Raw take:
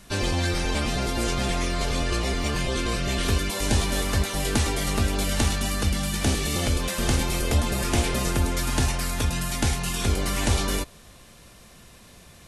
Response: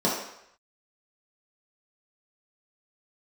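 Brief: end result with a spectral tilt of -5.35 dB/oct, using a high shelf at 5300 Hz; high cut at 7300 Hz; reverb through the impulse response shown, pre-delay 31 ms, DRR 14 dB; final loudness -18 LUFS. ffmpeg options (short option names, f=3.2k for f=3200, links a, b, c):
-filter_complex "[0:a]lowpass=7.3k,highshelf=f=5.3k:g=-8.5,asplit=2[a][b];[1:a]atrim=start_sample=2205,adelay=31[c];[b][c]afir=irnorm=-1:irlink=0,volume=-28dB[d];[a][d]amix=inputs=2:normalize=0,volume=8dB"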